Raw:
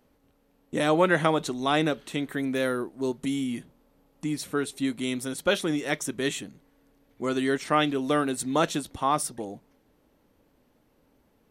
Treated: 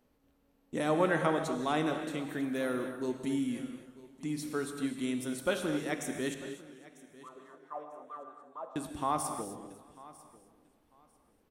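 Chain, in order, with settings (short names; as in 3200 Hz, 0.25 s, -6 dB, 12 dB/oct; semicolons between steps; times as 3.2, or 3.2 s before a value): dynamic EQ 3600 Hz, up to -5 dB, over -42 dBFS, Q 0.74; 6.34–8.76 wah 4.6 Hz 490–1200 Hz, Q 11; feedback echo 0.946 s, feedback 20%, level -20 dB; non-linear reverb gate 0.29 s flat, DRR 5.5 dB; warbling echo 0.25 s, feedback 45%, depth 94 cents, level -18 dB; gain -6.5 dB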